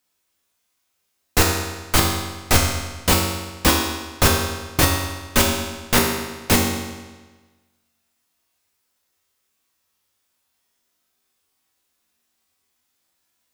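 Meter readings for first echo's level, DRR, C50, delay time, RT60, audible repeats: no echo, -1.5 dB, 2.5 dB, no echo, 1.3 s, no echo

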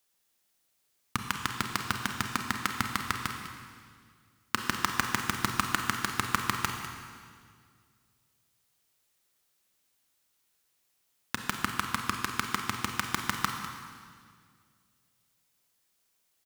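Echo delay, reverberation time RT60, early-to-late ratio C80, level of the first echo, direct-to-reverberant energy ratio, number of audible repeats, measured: 200 ms, 2.0 s, 5.0 dB, -13.5 dB, 3.5 dB, 1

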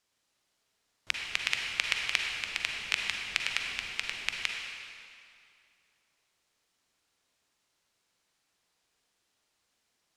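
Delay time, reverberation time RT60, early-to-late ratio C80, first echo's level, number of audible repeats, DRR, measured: no echo, 2.4 s, 2.5 dB, no echo, no echo, 1.0 dB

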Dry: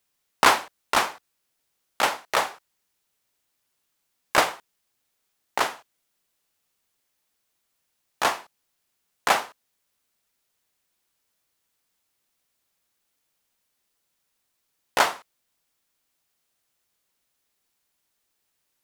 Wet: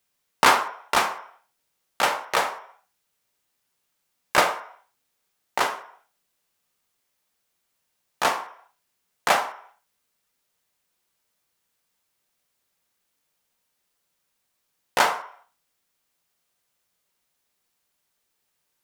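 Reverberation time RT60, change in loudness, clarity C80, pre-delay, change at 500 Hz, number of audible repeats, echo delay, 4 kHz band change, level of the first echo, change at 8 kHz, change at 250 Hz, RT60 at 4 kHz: 0.60 s, +0.5 dB, 14.0 dB, 3 ms, +1.0 dB, no echo, no echo, 0.0 dB, no echo, 0.0 dB, 0.0 dB, 0.60 s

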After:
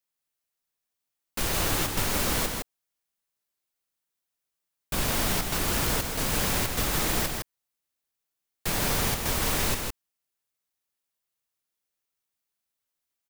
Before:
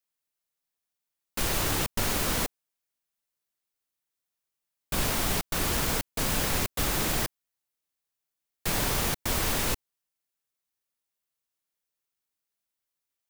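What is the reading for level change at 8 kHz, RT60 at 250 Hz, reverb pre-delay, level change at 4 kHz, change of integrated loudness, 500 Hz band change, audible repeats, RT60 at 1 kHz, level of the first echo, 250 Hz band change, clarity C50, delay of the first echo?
+1.5 dB, no reverb, no reverb, +1.5 dB, +1.0 dB, +1.5 dB, 1, no reverb, -4.5 dB, +1.5 dB, no reverb, 160 ms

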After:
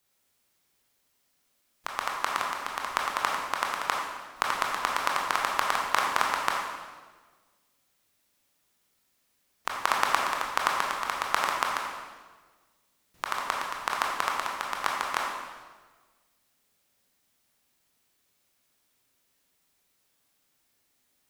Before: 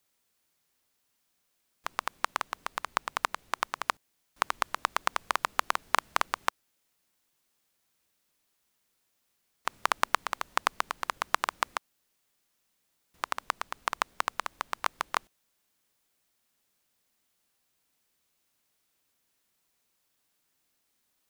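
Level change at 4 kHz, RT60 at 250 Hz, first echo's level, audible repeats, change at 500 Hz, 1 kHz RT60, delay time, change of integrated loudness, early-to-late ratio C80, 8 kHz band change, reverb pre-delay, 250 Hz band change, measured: +3.5 dB, 1.6 s, no echo, no echo, +4.5 dB, 1.3 s, no echo, +3.0 dB, 3.0 dB, +3.5 dB, 19 ms, +4.5 dB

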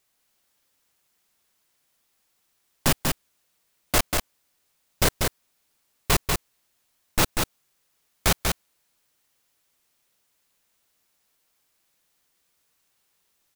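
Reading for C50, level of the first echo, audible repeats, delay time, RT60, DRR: no reverb, -4.0 dB, 1, 191 ms, no reverb, no reverb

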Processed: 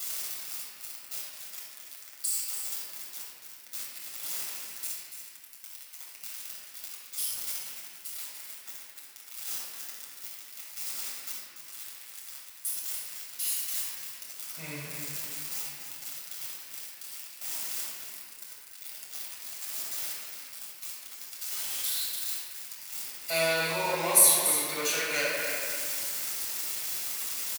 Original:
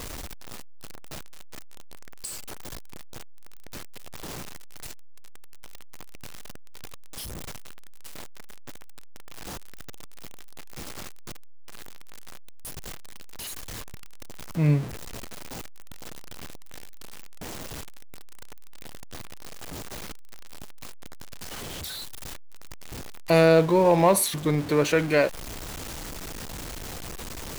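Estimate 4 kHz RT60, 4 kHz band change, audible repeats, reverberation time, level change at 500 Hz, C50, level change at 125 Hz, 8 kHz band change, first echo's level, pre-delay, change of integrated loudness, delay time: 1.4 s, +3.0 dB, 1, 2.1 s, -11.5 dB, -3.5 dB, -20.0 dB, +8.0 dB, -8.0 dB, 8 ms, -4.0 dB, 289 ms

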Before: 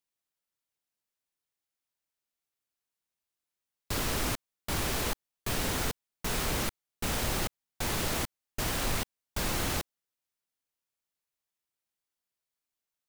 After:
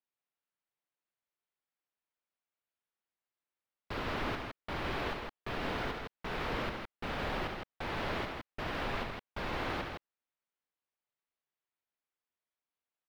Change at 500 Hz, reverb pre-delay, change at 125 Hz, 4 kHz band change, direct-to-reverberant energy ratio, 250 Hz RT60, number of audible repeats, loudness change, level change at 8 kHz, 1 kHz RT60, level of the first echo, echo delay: -1.5 dB, no reverb, -6.5 dB, -7.5 dB, no reverb, no reverb, 2, -5.5 dB, -24.5 dB, no reverb, -8.0 dB, 70 ms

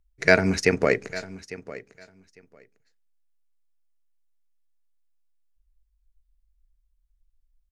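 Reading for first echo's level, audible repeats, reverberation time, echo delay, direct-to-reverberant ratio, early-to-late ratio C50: -17.0 dB, 2, no reverb, 851 ms, no reverb, no reverb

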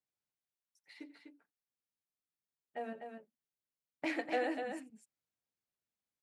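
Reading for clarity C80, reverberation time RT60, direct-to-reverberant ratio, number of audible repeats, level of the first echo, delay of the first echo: no reverb, no reverb, no reverb, 2, -18.5 dB, 87 ms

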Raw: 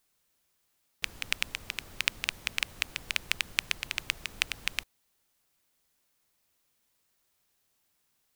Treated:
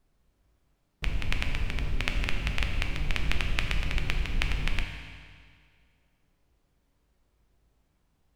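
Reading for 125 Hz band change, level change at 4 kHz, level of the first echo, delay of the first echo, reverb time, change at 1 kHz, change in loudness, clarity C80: +20.0 dB, -3.0 dB, no echo, no echo, 2.0 s, +4.5 dB, +1.0 dB, 6.0 dB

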